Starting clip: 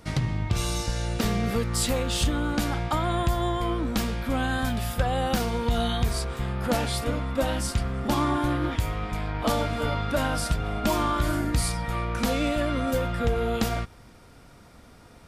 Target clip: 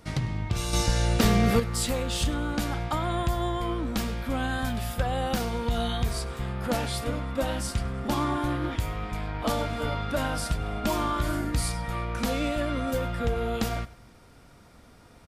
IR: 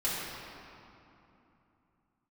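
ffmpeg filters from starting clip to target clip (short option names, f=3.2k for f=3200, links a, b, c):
-filter_complex "[0:a]asettb=1/sr,asplit=3[a][b][c];[a]atrim=end=0.734[d];[b]atrim=start=0.73:end=1.6,asetpts=PTS-STARTPTS,afade=t=in:d=0.004:c=qsin,afade=t=out:st=0.866:d=0.004:c=qsin,acontrast=76[e];[c]atrim=start=1.596[f];[d][e]acrossfade=d=0.004:c1=hsin:c2=qsin[g];[g][f]acrossfade=d=0.004:c1=qsin:c2=hsin,aecho=1:1:101|202|303:0.1|0.034|0.0116,volume=-2.5dB"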